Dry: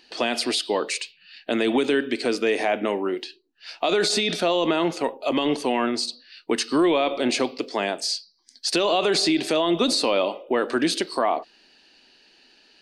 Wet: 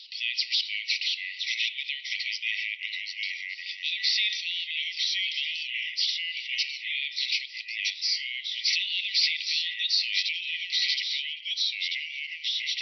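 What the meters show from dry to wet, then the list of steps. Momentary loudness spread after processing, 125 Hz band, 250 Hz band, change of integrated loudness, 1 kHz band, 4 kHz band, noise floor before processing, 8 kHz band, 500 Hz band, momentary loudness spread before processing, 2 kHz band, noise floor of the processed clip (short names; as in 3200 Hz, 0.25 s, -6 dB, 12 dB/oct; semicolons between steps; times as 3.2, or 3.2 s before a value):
8 LU, under -40 dB, under -40 dB, -4.0 dB, under -40 dB, +2.5 dB, -58 dBFS, -7.5 dB, under -40 dB, 9 LU, +1.0 dB, -42 dBFS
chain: echoes that change speed 0.459 s, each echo -2 st, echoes 2; FFT band-pass 1900–5900 Hz; reverse echo 0.544 s -22.5 dB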